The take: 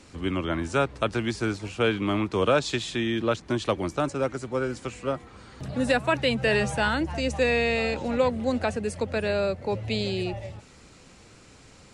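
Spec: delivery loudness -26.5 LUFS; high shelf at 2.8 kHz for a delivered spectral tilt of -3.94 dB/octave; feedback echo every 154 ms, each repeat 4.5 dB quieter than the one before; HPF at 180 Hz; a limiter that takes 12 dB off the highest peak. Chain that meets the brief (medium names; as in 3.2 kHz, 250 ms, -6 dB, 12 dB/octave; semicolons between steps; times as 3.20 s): high-pass 180 Hz; treble shelf 2.8 kHz -5 dB; peak limiter -23.5 dBFS; feedback delay 154 ms, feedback 60%, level -4.5 dB; trim +4.5 dB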